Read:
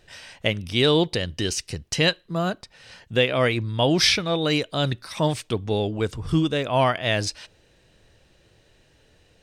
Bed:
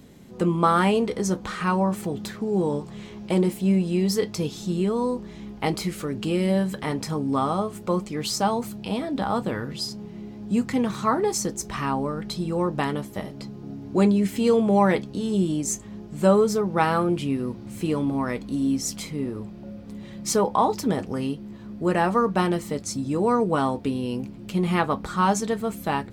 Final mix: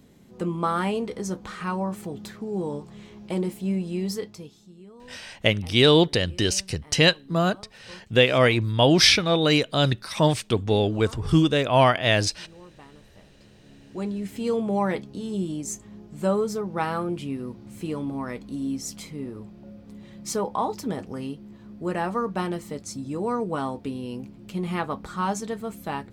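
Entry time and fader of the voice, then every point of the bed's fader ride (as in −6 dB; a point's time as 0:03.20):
5.00 s, +2.5 dB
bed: 0:04.12 −5.5 dB
0:04.73 −23.5 dB
0:13.07 −23.5 dB
0:14.53 −5.5 dB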